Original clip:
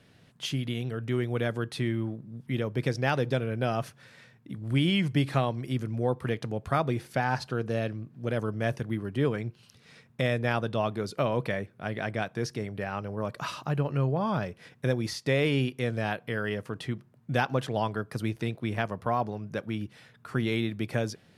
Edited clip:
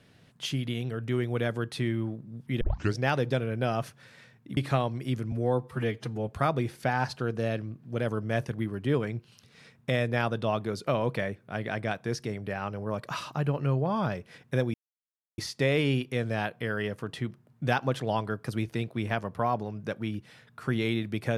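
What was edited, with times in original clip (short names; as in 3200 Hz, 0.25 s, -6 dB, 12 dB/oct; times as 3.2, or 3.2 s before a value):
2.61 tape start 0.34 s
4.57–5.2 cut
5.95–6.59 stretch 1.5×
15.05 insert silence 0.64 s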